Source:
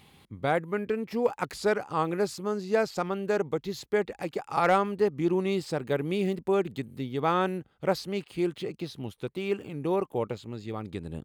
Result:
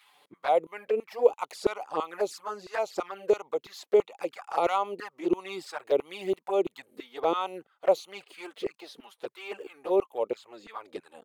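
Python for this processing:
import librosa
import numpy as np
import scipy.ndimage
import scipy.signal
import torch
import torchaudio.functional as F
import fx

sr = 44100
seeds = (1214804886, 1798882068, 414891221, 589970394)

y = fx.filter_lfo_highpass(x, sr, shape='saw_down', hz=3.0, low_hz=360.0, high_hz=1500.0, q=2.3)
y = fx.env_flanger(y, sr, rest_ms=7.5, full_db=-23.5)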